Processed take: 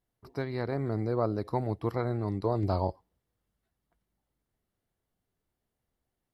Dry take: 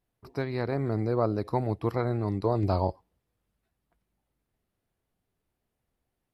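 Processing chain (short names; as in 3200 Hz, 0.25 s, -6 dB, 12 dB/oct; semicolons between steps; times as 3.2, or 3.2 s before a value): notch 2500 Hz, Q 11; gain -2.5 dB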